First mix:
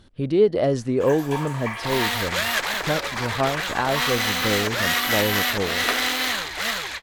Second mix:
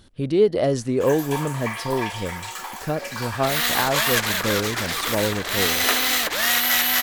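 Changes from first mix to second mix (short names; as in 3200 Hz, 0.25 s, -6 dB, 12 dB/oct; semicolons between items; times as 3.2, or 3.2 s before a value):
second sound: entry +1.60 s; master: add high shelf 6600 Hz +11 dB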